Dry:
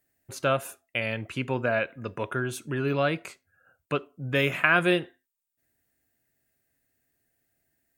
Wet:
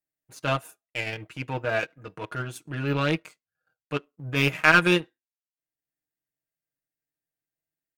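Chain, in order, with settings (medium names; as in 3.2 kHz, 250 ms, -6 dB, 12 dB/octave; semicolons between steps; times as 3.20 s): comb 6.4 ms, depth 88%; power-law waveshaper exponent 1.4; transient shaper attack -8 dB, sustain -4 dB; trim +7.5 dB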